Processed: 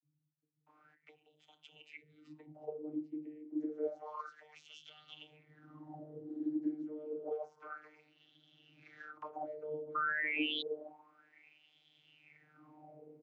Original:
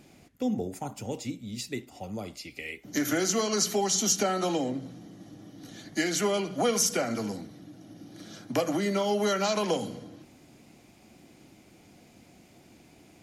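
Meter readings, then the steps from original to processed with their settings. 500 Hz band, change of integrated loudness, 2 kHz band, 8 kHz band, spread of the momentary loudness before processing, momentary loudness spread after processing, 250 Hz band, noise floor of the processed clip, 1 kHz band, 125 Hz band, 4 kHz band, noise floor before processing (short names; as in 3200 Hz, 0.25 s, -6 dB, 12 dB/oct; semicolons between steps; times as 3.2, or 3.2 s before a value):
-14.0 dB, -11.0 dB, -4.5 dB, under -40 dB, 22 LU, 23 LU, -11.0 dB, -80 dBFS, -11.5 dB, -22.0 dB, -12.0 dB, -57 dBFS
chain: compressor 5:1, threshold -41 dBFS, peak gain reduction 18 dB; wah 0.29 Hz 270–3300 Hz, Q 21; painted sound rise, 9.28–9.96, 1200–3700 Hz -49 dBFS; vocoder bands 32, saw 152 Hz; bands offset in time lows, highs 0.66 s, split 190 Hz; gain +18 dB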